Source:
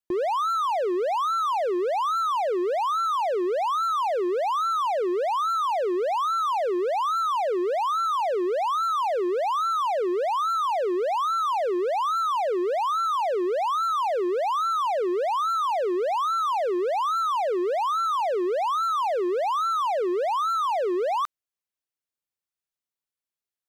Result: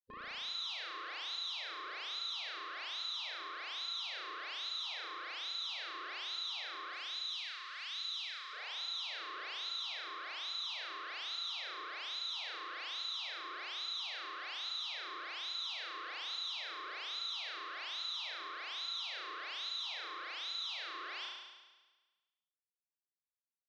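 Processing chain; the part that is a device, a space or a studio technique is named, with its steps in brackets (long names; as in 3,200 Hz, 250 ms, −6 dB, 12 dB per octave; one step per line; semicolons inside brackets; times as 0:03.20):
gate on every frequency bin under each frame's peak −15 dB weak
0:06.93–0:08.53: Bessel high-pass filter 1,600 Hz, order 2
overdriven synthesiser ladder filter (soft clipping −38 dBFS, distortion −15 dB; transistor ladder low-pass 5,100 Hz, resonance 50%)
flutter between parallel walls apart 6 metres, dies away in 1.3 s
level +2.5 dB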